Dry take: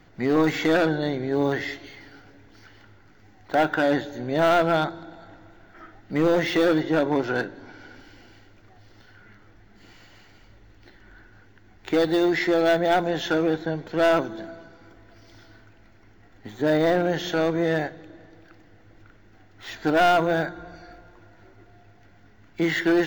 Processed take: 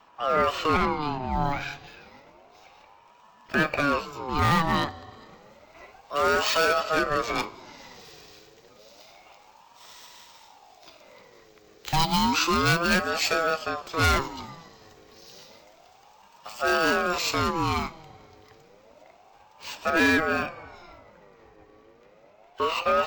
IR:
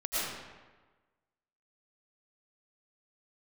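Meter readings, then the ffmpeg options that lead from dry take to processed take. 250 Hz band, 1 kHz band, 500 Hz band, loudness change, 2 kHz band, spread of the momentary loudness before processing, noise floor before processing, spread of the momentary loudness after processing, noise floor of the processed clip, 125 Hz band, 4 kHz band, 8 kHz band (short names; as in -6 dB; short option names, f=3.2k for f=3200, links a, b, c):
-6.5 dB, +1.5 dB, -6.0 dB, -2.0 dB, +2.0 dB, 11 LU, -53 dBFS, 14 LU, -56 dBFS, 0.0 dB, +4.0 dB, +9.0 dB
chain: -filter_complex "[0:a]acrossover=split=410|540|3800[a][b][c][d];[d]dynaudnorm=f=830:g=13:m=15.5dB[e];[a][b][c][e]amix=inputs=4:normalize=0,aeval=exprs='val(0)*sin(2*PI*700*n/s+700*0.4/0.3*sin(2*PI*0.3*n/s))':c=same"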